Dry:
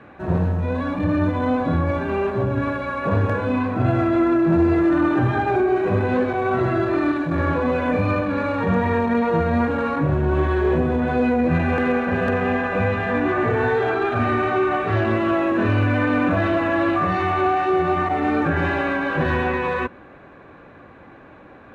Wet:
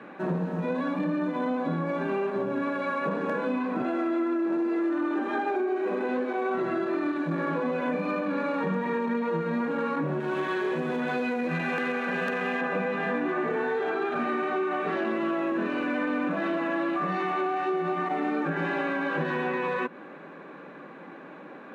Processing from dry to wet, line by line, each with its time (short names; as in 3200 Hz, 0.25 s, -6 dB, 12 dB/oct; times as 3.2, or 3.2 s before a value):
3.82–6.55 brick-wall FIR high-pass 200 Hz
10.2–12.61 tilt shelf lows -6 dB, about 1300 Hz
whole clip: elliptic high-pass 160 Hz; notch 700 Hz, Q 12; compressor, threshold -27 dBFS; gain +1.5 dB